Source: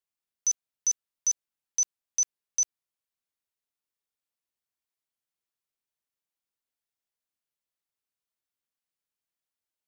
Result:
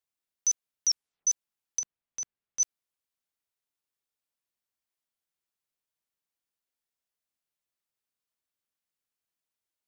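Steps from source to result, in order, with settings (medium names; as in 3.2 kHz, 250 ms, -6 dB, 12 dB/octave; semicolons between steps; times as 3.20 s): 0.87 s: tape stop 0.40 s; 1.79–2.60 s: tone controls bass +5 dB, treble -12 dB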